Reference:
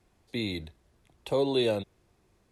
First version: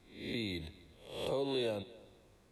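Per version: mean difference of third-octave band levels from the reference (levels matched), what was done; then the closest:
5.0 dB: peak hold with a rise ahead of every peak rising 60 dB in 0.52 s
downward compressor 2 to 1, threshold −40 dBFS, peak gain reduction 10.5 dB
on a send: echo machine with several playback heads 86 ms, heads first and third, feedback 42%, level −21.5 dB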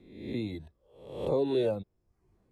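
7.0 dB: peak hold with a rise ahead of every peak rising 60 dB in 0.74 s
reverb reduction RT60 0.67 s
tilt shelving filter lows +7.5 dB, about 1,200 Hz
level −7 dB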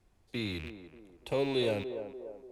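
3.5 dB: loose part that buzzes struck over −45 dBFS, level −28 dBFS
low-shelf EQ 67 Hz +10 dB
on a send: feedback echo with a band-pass in the loop 292 ms, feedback 55%, band-pass 530 Hz, level −8 dB
on the sum: level −4.5 dB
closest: third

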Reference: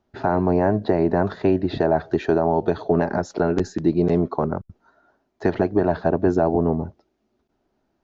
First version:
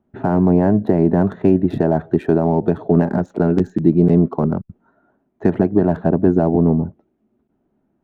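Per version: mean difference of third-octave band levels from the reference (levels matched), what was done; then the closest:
3.5 dB: adaptive Wiener filter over 9 samples
parametric band 190 Hz +11.5 dB 1.8 octaves
level −2 dB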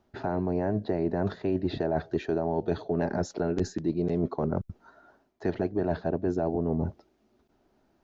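2.0 dB: dynamic equaliser 1,100 Hz, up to −6 dB, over −36 dBFS, Q 1.1
reversed playback
downward compressor 5 to 1, threshold −28 dBFS, peak gain reduction 13 dB
reversed playback
level +3 dB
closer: second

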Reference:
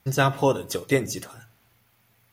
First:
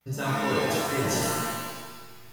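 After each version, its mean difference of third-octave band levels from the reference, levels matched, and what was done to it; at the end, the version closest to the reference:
13.5 dB: noise gate with hold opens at −55 dBFS
reversed playback
downward compressor 10 to 1, threshold −31 dBFS, peak gain reduction 16.5 dB
reversed playback
reverb with rising layers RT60 1.2 s, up +7 semitones, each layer −2 dB, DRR −6.5 dB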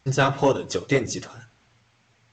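4.5 dB: flanger 1.9 Hz, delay 1.9 ms, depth 9.4 ms, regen −33%
soft clipping −13.5 dBFS, distortion −22 dB
level +6 dB
G.722 64 kbit/s 16,000 Hz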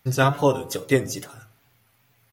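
2.0 dB: comb filter 7.3 ms, depth 35%
hum removal 74.58 Hz, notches 19
tape wow and flutter 93 cents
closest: third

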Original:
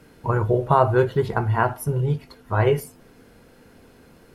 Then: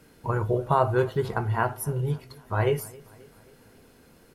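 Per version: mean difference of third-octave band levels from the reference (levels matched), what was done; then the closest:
2.5 dB: high-shelf EQ 4,500 Hz +6.5 dB
on a send: repeating echo 268 ms, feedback 55%, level −23.5 dB
on the sum: level −5 dB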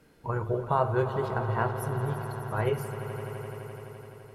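8.5 dB: mains-hum notches 50/100/150/200/250/300/350/400 Hz
on a send: echo that builds up and dies away 85 ms, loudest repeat 5, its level −14 dB
on the sum: level −8.5 dB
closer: first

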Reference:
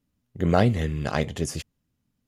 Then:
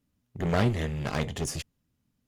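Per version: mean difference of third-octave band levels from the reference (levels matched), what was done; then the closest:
4.0 dB: asymmetric clip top −29.5 dBFS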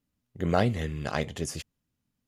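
1.5 dB: low-shelf EQ 470 Hz −3.5 dB
level −2.5 dB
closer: second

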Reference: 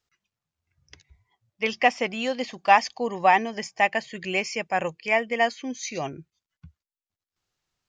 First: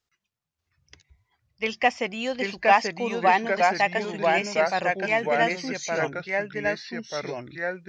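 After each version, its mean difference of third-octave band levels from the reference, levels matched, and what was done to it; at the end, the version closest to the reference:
6.5 dB: delay with pitch and tempo change per echo 589 ms, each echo −2 semitones, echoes 2
level −1.5 dB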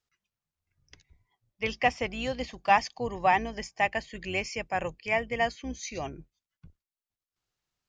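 2.0 dB: sub-octave generator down 2 octaves, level −4 dB
level −5 dB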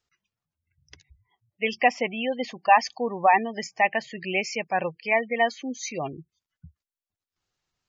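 4.0 dB: gate on every frequency bin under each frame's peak −20 dB strong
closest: second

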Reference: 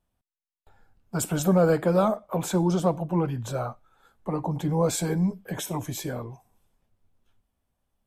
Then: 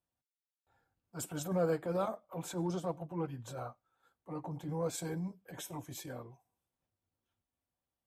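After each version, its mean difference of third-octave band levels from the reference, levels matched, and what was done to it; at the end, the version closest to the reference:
1.5 dB: high-pass filter 42 Hz
low-shelf EQ 79 Hz −11 dB
transient designer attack −9 dB, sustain −5 dB
notch comb filter 210 Hz
level −8.5 dB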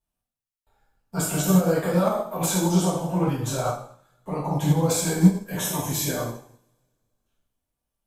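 8.0 dB: high-shelf EQ 4,200 Hz +8 dB
brickwall limiter −21.5 dBFS, peak gain reduction 11.5 dB
coupled-rooms reverb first 0.78 s, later 2.6 s, from −26 dB, DRR −7 dB
expander for the loud parts 1.5 to 1, over −49 dBFS
level +4 dB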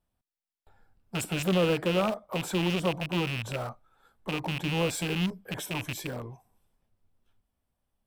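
6.5 dB: loose part that buzzes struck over −30 dBFS, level −17 dBFS
in parallel at −12 dB: wrap-around overflow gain 26 dB
on the sum: notch filter 6,600 Hz, Q 7.7
highs frequency-modulated by the lows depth 0.25 ms
level −5 dB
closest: first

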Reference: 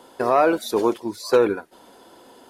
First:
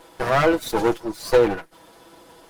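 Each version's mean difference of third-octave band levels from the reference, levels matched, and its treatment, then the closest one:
4.0 dB: lower of the sound and its delayed copy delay 6.1 ms
level +1.5 dB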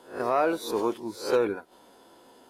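2.5 dB: peak hold with a rise ahead of every peak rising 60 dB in 0.37 s
level −7.5 dB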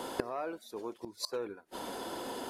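12.0 dB: gate with flip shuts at −26 dBFS, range −29 dB
level +8.5 dB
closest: second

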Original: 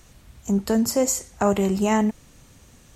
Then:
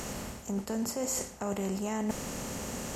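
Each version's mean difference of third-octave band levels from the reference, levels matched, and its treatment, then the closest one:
14.0 dB: compressor on every frequency bin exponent 0.6
reversed playback
downward compressor 10 to 1, threshold −30 dBFS, peak gain reduction 17 dB
reversed playback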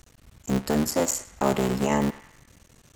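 5.0 dB: sub-harmonics by changed cycles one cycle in 3, muted
on a send: feedback echo with a band-pass in the loop 102 ms, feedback 56%, band-pass 1,900 Hz, level −12 dB
on the sum: level −1.5 dB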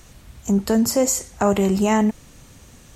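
1.0 dB: in parallel at −3 dB: brickwall limiter −19.5 dBFS, peak gain reduction 11 dB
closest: third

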